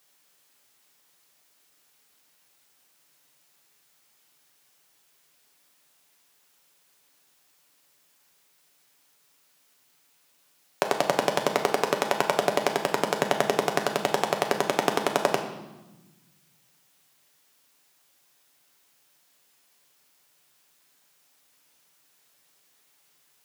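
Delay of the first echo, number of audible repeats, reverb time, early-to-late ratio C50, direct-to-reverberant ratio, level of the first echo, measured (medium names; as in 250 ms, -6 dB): no echo, no echo, 1.1 s, 8.0 dB, 3.5 dB, no echo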